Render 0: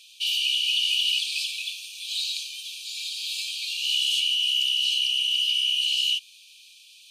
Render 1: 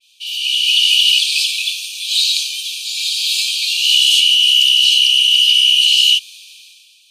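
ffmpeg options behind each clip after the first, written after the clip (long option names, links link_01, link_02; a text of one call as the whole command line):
ffmpeg -i in.wav -af "dynaudnorm=framelen=100:gausssize=11:maxgain=12dB,adynamicequalizer=threshold=0.0562:dfrequency=2300:dqfactor=0.7:tfrequency=2300:tqfactor=0.7:attack=5:release=100:ratio=0.375:range=2.5:mode=boostabove:tftype=highshelf,volume=-2dB" out.wav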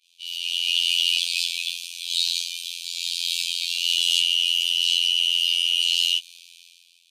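ffmpeg -i in.wav -af "afftfilt=real='hypot(re,im)*cos(PI*b)':imag='0':win_size=2048:overlap=0.75,volume=-5.5dB" out.wav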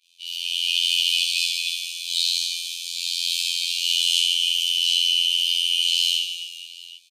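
ffmpeg -i in.wav -af "aecho=1:1:60|150|285|487.5|791.2:0.631|0.398|0.251|0.158|0.1" out.wav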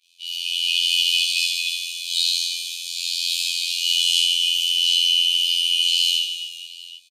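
ffmpeg -i in.wav -filter_complex "[0:a]asplit=2[link_01][link_02];[link_02]adelay=14,volume=-5.5dB[link_03];[link_01][link_03]amix=inputs=2:normalize=0" out.wav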